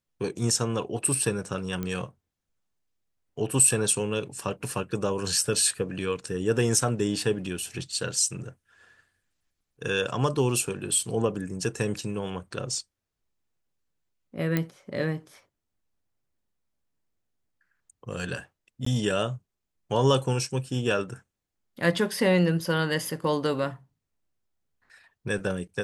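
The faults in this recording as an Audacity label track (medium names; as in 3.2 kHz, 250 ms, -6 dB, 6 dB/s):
1.830000	1.830000	pop -18 dBFS
14.570000	14.570000	pop -12 dBFS
18.850000	18.860000	dropout 14 ms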